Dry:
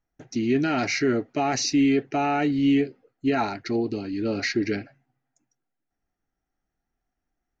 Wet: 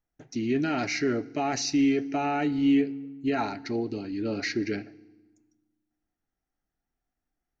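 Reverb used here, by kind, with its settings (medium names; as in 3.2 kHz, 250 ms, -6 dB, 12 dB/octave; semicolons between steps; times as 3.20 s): FDN reverb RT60 1.1 s, low-frequency decay 1.6×, high-frequency decay 0.95×, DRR 18.5 dB; trim -4 dB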